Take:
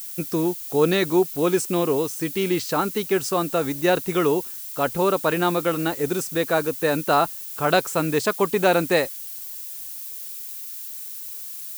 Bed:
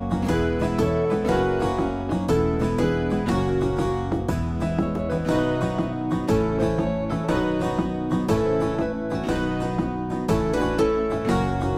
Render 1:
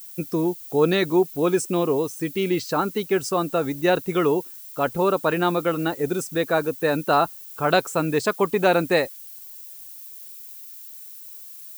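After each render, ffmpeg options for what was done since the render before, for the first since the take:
-af "afftdn=nr=8:nf=-35"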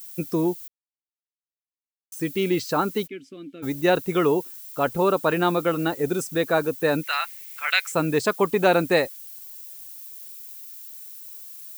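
-filter_complex "[0:a]asplit=3[s0][s1][s2];[s0]afade=t=out:st=3.06:d=0.02[s3];[s1]asplit=3[s4][s5][s6];[s4]bandpass=f=270:t=q:w=8,volume=1[s7];[s5]bandpass=f=2290:t=q:w=8,volume=0.501[s8];[s6]bandpass=f=3010:t=q:w=8,volume=0.355[s9];[s7][s8][s9]amix=inputs=3:normalize=0,afade=t=in:st=3.06:d=0.02,afade=t=out:st=3.62:d=0.02[s10];[s2]afade=t=in:st=3.62:d=0.02[s11];[s3][s10][s11]amix=inputs=3:normalize=0,asettb=1/sr,asplit=3[s12][s13][s14];[s12]atrim=end=7.034[s15];[s13]atrim=start=7.03:end=7.92,asetpts=PTS-STARTPTS,afade=t=in:d=0.004:c=qsin,afade=t=out:st=0.886:d=0.004:c=qsin,highpass=f=2100:t=q:w=5.5[s16];[s14]atrim=start=7.916[s17];[s15][s16]acrossfade=d=0.004:c1=hsin:c2=qsin[s18];[s18][s17]acrossfade=d=0.004:c1=qsin:c2=hsin,asplit=3[s19][s20][s21];[s19]atrim=end=0.68,asetpts=PTS-STARTPTS,afade=t=out:st=0.676:d=0.004:c=hsin[s22];[s20]atrim=start=0.68:end=2.12,asetpts=PTS-STARTPTS,volume=0[s23];[s21]atrim=start=2.12,asetpts=PTS-STARTPTS,afade=t=in:d=0.004:c=hsin[s24];[s22][s23][s24]concat=n=3:v=0:a=1"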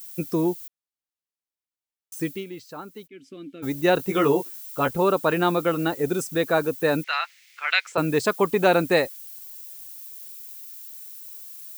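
-filter_complex "[0:a]asettb=1/sr,asplit=3[s0][s1][s2];[s0]atrim=end=3.984[s3];[s1]atrim=start=3.98:end=4.91,asetpts=PTS-STARTPTS,afade=t=in:d=0.004:c=qsin,afade=t=out:st=0.926:d=0.004:c=qsin,asplit=2[s4][s5];[s5]adelay=15,volume=0.631[s6];[s4][s6]amix=inputs=2:normalize=0,atrim=end_sample=41013[s7];[s2]atrim=start=4.906[s8];[s3][s7]acrossfade=d=0.004:c1=hsin:c2=qsin[s9];[s9][s8]acrossfade=d=0.004:c1=qsin:c2=hsin,asettb=1/sr,asplit=3[s10][s11][s12];[s10]atrim=end=7.044[s13];[s11]atrim=start=7.04:end=7.98,asetpts=PTS-STARTPTS,afade=t=in:d=0.004:c=qsin,afade=t=out:st=0.936:d=0.004:c=qsin,acrossover=split=320 5900:gain=0.178 1 0.0794[s14][s15][s16];[s14][s15][s16]amix=inputs=3:normalize=0[s17];[s12]atrim=start=7.976[s18];[s13][s17]acrossfade=d=0.004:c1=hsin:c2=qsin[s19];[s19][s18]acrossfade=d=0.004:c1=qsin:c2=hsin,asplit=3[s20][s21][s22];[s20]atrim=end=2.45,asetpts=PTS-STARTPTS,afade=t=out:st=2.23:d=0.22:silence=0.177828[s23];[s21]atrim=start=2.45:end=3.09,asetpts=PTS-STARTPTS,volume=0.178[s24];[s22]atrim=start=3.09,asetpts=PTS-STARTPTS,afade=t=in:d=0.22:silence=0.177828[s25];[s23][s24][s25]concat=n=3:v=0:a=1"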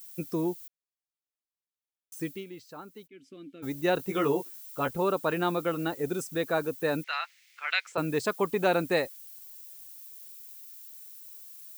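-af "volume=0.473"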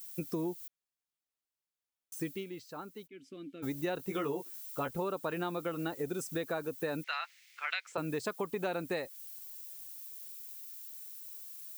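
-af "acompressor=threshold=0.0251:ratio=6"

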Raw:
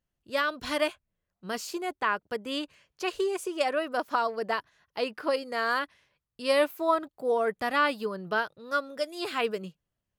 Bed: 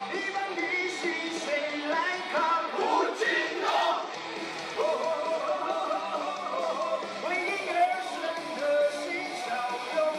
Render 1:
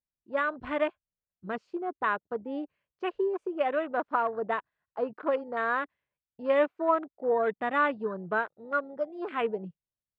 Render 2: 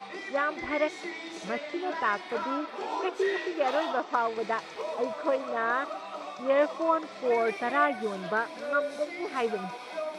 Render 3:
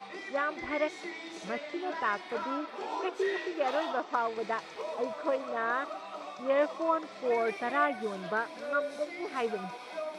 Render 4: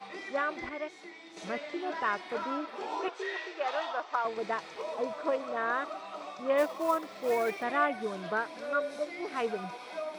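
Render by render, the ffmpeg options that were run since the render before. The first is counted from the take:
-af "lowpass=2100,afwtdn=0.0126"
-filter_complex "[1:a]volume=0.422[s0];[0:a][s0]amix=inputs=2:normalize=0"
-af "volume=0.708"
-filter_complex "[0:a]asettb=1/sr,asplit=3[s0][s1][s2];[s0]atrim=end=3.084[s3];[s1]atrim=start=3.08:end=4.25,asetpts=PTS-STARTPTS,afade=t=in:d=0.004:c=qsin,afade=t=out:st=1.166:d=0.004:c=qsin,highpass=610,lowpass=7300[s4];[s2]atrim=start=4.246[s5];[s3][s4]acrossfade=d=0.004:c1=hsin:c2=qsin[s6];[s6][s5]acrossfade=d=0.004:c1=qsin:c2=hsin,asplit=3[s7][s8][s9];[s7]afade=t=out:st=6.57:d=0.02[s10];[s8]acrusher=bits=5:mode=log:mix=0:aa=0.000001,afade=t=in:st=6.57:d=0.02,afade=t=out:st=7.62:d=0.02[s11];[s9]afade=t=in:st=7.62:d=0.02[s12];[s10][s11][s12]amix=inputs=3:normalize=0,asplit=3[s13][s14][s15];[s13]atrim=end=0.692[s16];[s14]atrim=start=0.688:end=1.372,asetpts=PTS-STARTPTS,volume=0.422[s17];[s15]atrim=start=1.368[s18];[s16][s17]acrossfade=d=0.004:c1=hsin:c2=hsin[s19];[s19][s18]acrossfade=d=0.004:c1=hsin:c2=hsin"

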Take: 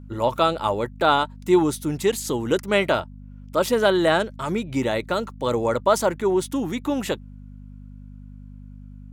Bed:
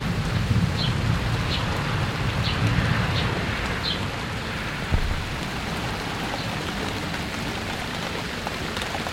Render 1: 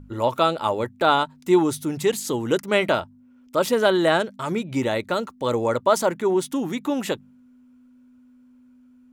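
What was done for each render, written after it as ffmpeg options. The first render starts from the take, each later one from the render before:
-af "bandreject=f=50:t=h:w=4,bandreject=f=100:t=h:w=4,bandreject=f=150:t=h:w=4,bandreject=f=200:t=h:w=4"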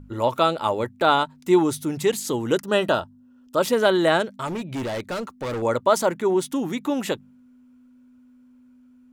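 -filter_complex "[0:a]asettb=1/sr,asplit=3[s0][s1][s2];[s0]atrim=end=2.634[s3];[s1]atrim=start=2.63:end=3.59,asetpts=PTS-STARTPTS,afade=t=in:d=0.004:c=qsin,afade=t=out:st=0.956:d=0.004:c=qsin,asuperstop=centerf=2200:order=4:qfactor=3.4[s4];[s2]atrim=start=3.586[s5];[s3][s4]acrossfade=d=0.004:c1=hsin:c2=qsin[s6];[s6][s5]acrossfade=d=0.004:c1=qsin:c2=hsin,asettb=1/sr,asplit=3[s7][s8][s9];[s7]atrim=end=4.474[s10];[s8]atrim=start=4.47:end=5.62,asetpts=PTS-STARTPTS,afade=t=in:d=0.004:c=qsin,afade=t=out:st=1.146:d=0.004:c=qsin,asoftclip=type=hard:threshold=0.0531[s11];[s9]atrim=start=5.616[s12];[s10][s11]acrossfade=d=0.004:c1=hsin:c2=qsin[s13];[s13][s12]acrossfade=d=0.004:c1=qsin:c2=hsin"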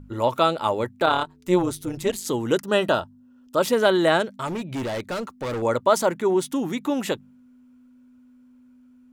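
-filter_complex "[0:a]asettb=1/sr,asplit=3[s0][s1][s2];[s0]atrim=end=1.064[s3];[s1]atrim=start=1.06:end=2.26,asetpts=PTS-STARTPTS,afade=t=in:d=0.004:c=qsin,afade=t=out:st=1.196:d=0.004:c=qsin,tremolo=f=180:d=0.71[s4];[s2]atrim=start=2.256[s5];[s3][s4]acrossfade=d=0.004:c1=hsin:c2=qsin[s6];[s6][s5]acrossfade=d=0.004:c1=qsin:c2=hsin"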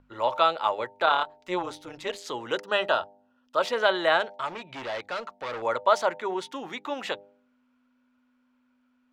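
-filter_complex "[0:a]acrossover=split=550 5100:gain=0.126 1 0.0794[s0][s1][s2];[s0][s1][s2]amix=inputs=3:normalize=0,bandreject=f=100.6:t=h:w=4,bandreject=f=201.2:t=h:w=4,bandreject=f=301.8:t=h:w=4,bandreject=f=402.4:t=h:w=4,bandreject=f=503:t=h:w=4,bandreject=f=603.6:t=h:w=4,bandreject=f=704.2:t=h:w=4,bandreject=f=804.8:t=h:w=4,bandreject=f=905.4:t=h:w=4"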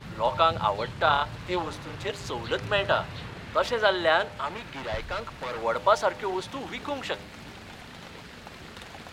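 -filter_complex "[1:a]volume=0.178[s0];[0:a][s0]amix=inputs=2:normalize=0"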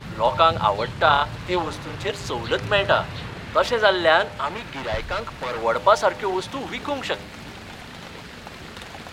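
-af "volume=1.88,alimiter=limit=0.708:level=0:latency=1"

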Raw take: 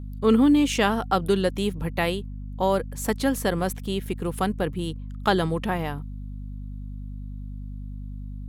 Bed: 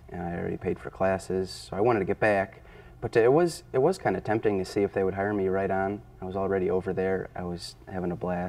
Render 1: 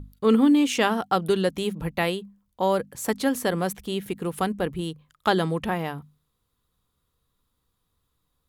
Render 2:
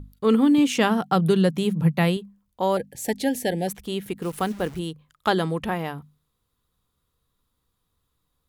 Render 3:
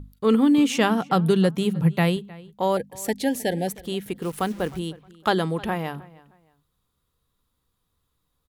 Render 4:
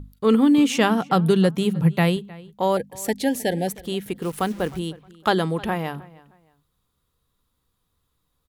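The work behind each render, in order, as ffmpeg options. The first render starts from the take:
-af "bandreject=f=50:t=h:w=6,bandreject=f=100:t=h:w=6,bandreject=f=150:t=h:w=6,bandreject=f=200:t=h:w=6,bandreject=f=250:t=h:w=6"
-filter_complex "[0:a]asettb=1/sr,asplit=3[s0][s1][s2];[s0]atrim=end=0.584[s3];[s1]atrim=start=0.58:end=2.17,asetpts=PTS-STARTPTS,afade=t=in:d=0.004:c=qsin,afade=t=out:st=1.586:d=0.004:c=qsin,highpass=f=150:t=q:w=4.9[s4];[s2]atrim=start=2.166[s5];[s3][s4]acrossfade=d=0.004:c1=hsin:c2=qsin[s6];[s6][s5]acrossfade=d=0.004:c1=qsin:c2=hsin,asettb=1/sr,asplit=3[s7][s8][s9];[s7]atrim=end=2.774[s10];[s8]atrim=start=2.77:end=3.68,asetpts=PTS-STARTPTS,afade=t=in:d=0.004:c=qsin,afade=t=out:st=0.906:d=0.004:c=qsin,asuperstop=centerf=1200:order=12:qfactor=1.6[s11];[s9]atrim=start=3.676[s12];[s10][s11]acrossfade=d=0.004:c1=hsin:c2=qsin[s13];[s13][s12]acrossfade=d=0.004:c1=qsin:c2=hsin,asettb=1/sr,asplit=3[s14][s15][s16];[s14]atrim=end=4.224[s17];[s15]atrim=start=4.22:end=4.79,asetpts=PTS-STARTPTS,afade=t=in:d=0.004:c=qsin,afade=t=out:st=0.566:d=0.004:c=qsin,acrusher=bits=8:dc=4:mix=0:aa=0.000001[s18];[s16]atrim=start=4.786[s19];[s17][s18]acrossfade=d=0.004:c1=hsin:c2=qsin[s20];[s20][s19]acrossfade=d=0.004:c1=qsin:c2=hsin"
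-filter_complex "[0:a]asplit=2[s0][s1];[s1]adelay=311,lowpass=f=4000:p=1,volume=0.0891,asplit=2[s2][s3];[s3]adelay=311,lowpass=f=4000:p=1,volume=0.27[s4];[s0][s2][s4]amix=inputs=3:normalize=0"
-af "volume=1.19"

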